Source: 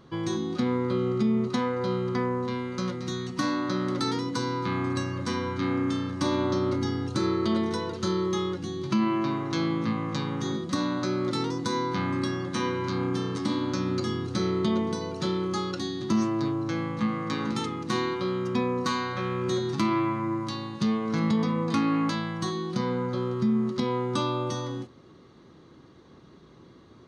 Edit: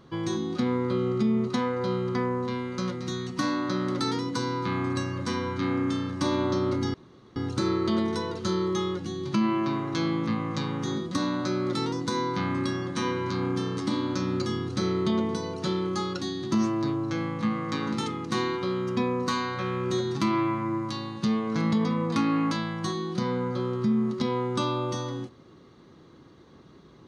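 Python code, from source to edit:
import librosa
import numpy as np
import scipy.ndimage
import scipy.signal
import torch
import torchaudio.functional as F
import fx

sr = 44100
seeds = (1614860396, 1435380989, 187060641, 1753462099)

y = fx.edit(x, sr, fx.insert_room_tone(at_s=6.94, length_s=0.42), tone=tone)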